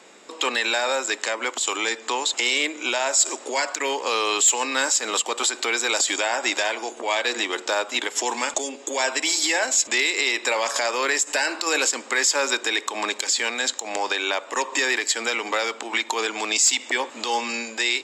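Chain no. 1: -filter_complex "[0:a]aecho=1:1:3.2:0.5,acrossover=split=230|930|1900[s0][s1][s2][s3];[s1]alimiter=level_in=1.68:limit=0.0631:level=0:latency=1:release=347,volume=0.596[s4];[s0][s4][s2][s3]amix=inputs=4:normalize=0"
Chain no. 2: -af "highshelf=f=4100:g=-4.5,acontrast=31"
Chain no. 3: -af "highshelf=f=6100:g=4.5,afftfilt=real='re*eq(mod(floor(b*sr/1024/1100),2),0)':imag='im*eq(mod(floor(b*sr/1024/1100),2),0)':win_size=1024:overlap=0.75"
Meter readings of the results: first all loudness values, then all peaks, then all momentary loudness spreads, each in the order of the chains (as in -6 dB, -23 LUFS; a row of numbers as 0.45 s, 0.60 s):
-22.0 LUFS, -19.0 LUFS, -23.0 LUFS; -7.0 dBFS, -6.5 dBFS, -5.5 dBFS; 7 LU, 5 LU, 8 LU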